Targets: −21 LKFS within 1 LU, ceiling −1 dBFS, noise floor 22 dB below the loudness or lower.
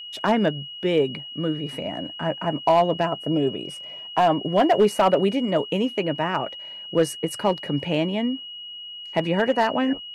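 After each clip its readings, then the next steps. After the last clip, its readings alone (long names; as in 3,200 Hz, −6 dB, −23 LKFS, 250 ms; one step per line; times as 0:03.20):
share of clipped samples 0.3%; peaks flattened at −10.5 dBFS; interfering tone 2,900 Hz; level of the tone −35 dBFS; integrated loudness −23.5 LKFS; sample peak −10.5 dBFS; target loudness −21.0 LKFS
→ clipped peaks rebuilt −10.5 dBFS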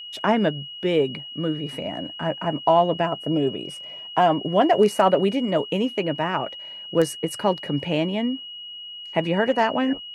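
share of clipped samples 0.0%; interfering tone 2,900 Hz; level of the tone −35 dBFS
→ notch filter 2,900 Hz, Q 30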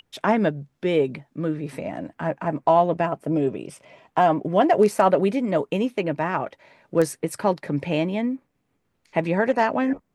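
interfering tone none found; integrated loudness −23.0 LKFS; sample peak −4.5 dBFS; target loudness −21.0 LKFS
→ level +2 dB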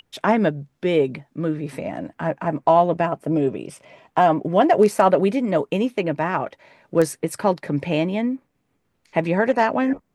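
integrated loudness −21.0 LKFS; sample peak −2.5 dBFS; background noise floor −71 dBFS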